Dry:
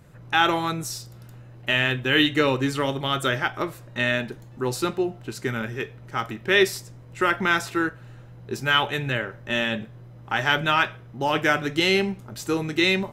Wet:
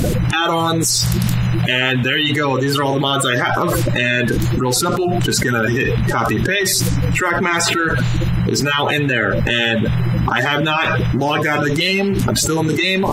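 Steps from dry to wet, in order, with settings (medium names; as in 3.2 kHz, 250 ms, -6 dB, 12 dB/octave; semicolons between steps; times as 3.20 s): coarse spectral quantiser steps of 30 dB; level flattener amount 100%; trim -1 dB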